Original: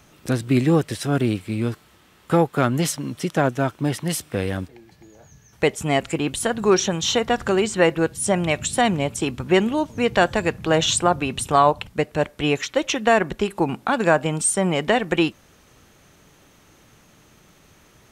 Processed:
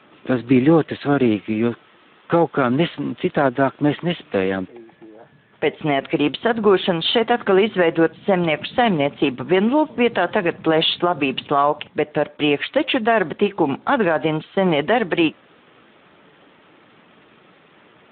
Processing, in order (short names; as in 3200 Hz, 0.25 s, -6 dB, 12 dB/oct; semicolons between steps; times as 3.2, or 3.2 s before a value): HPF 220 Hz 12 dB/oct; maximiser +12 dB; gain -5.5 dB; Speex 11 kbps 8000 Hz